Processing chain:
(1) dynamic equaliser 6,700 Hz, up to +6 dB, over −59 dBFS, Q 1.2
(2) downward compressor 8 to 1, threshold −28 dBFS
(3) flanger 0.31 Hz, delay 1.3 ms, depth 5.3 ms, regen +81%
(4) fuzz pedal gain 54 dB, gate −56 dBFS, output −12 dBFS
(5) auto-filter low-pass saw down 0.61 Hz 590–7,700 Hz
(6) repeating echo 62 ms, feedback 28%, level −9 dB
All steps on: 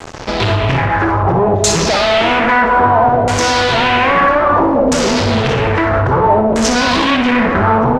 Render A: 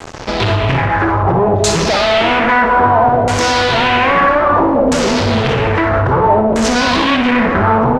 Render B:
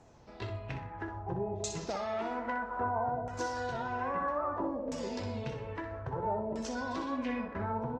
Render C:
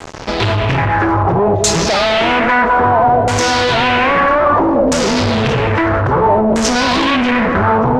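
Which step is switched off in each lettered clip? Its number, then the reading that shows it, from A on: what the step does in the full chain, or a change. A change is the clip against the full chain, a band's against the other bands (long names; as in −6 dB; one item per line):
1, 8 kHz band −3.0 dB
4, distortion level −4 dB
6, change in crest factor −2.0 dB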